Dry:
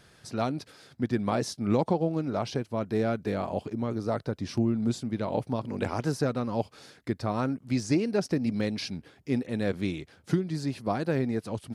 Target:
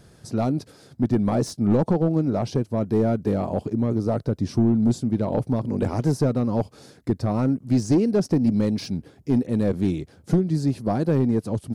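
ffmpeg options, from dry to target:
-af "bass=f=250:g=1,treble=f=4000:g=13,volume=11.9,asoftclip=hard,volume=0.0841,tiltshelf=f=1200:g=9"

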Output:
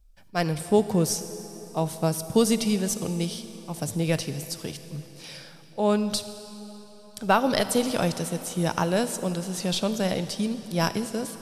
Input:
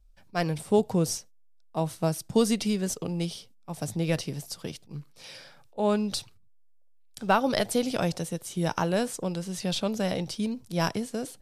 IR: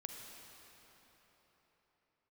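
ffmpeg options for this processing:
-filter_complex "[0:a]asplit=2[s0][s1];[1:a]atrim=start_sample=2205,highshelf=f=6000:g=10.5[s2];[s1][s2]afir=irnorm=-1:irlink=0,volume=0.75[s3];[s0][s3]amix=inputs=2:normalize=0,volume=0.891"

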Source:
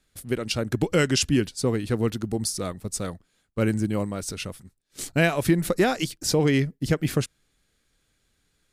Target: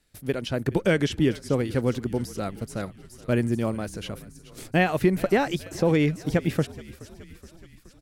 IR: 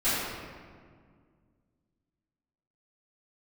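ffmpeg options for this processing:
-filter_complex "[0:a]asplit=7[s0][s1][s2][s3][s4][s5][s6];[s1]adelay=460,afreqshift=-39,volume=0.0944[s7];[s2]adelay=920,afreqshift=-78,volume=0.0617[s8];[s3]adelay=1380,afreqshift=-117,volume=0.0398[s9];[s4]adelay=1840,afreqshift=-156,volume=0.026[s10];[s5]adelay=2300,afreqshift=-195,volume=0.0168[s11];[s6]adelay=2760,afreqshift=-234,volume=0.011[s12];[s0][s7][s8][s9][s10][s11][s12]amix=inputs=7:normalize=0,asetrate=48000,aresample=44100,acrossover=split=3100[s13][s14];[s14]acompressor=threshold=0.00794:ratio=4:attack=1:release=60[s15];[s13][s15]amix=inputs=2:normalize=0"

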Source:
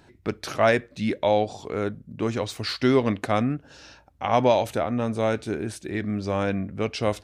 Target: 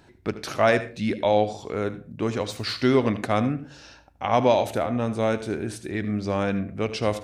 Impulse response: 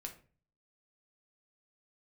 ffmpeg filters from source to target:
-filter_complex "[0:a]asplit=2[s0][s1];[1:a]atrim=start_sample=2205,afade=t=out:st=0.24:d=0.01,atrim=end_sample=11025,adelay=76[s2];[s1][s2]afir=irnorm=-1:irlink=0,volume=0.335[s3];[s0][s3]amix=inputs=2:normalize=0"

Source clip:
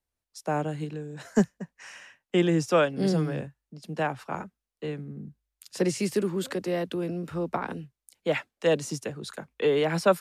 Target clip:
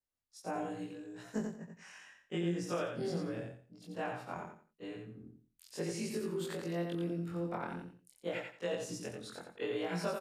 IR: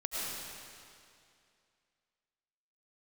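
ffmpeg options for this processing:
-filter_complex "[0:a]afftfilt=real='re':imag='-im':win_size=2048:overlap=0.75,acompressor=threshold=0.0398:ratio=6,asplit=2[s0][s1];[s1]aecho=0:1:88|176|264:0.562|0.141|0.0351[s2];[s0][s2]amix=inputs=2:normalize=0,volume=0.562"

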